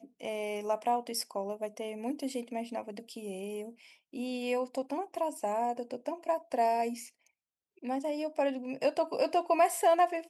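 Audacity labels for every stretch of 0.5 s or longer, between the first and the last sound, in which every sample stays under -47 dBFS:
7.090000	7.830000	silence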